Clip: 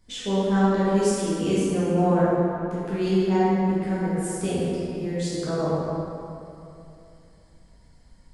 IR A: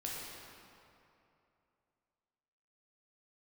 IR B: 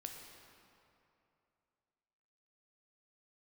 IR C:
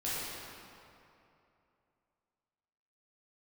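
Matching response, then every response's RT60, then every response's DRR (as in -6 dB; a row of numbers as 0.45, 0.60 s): C; 2.8, 2.8, 2.8 s; -5.0, 2.0, -10.5 dB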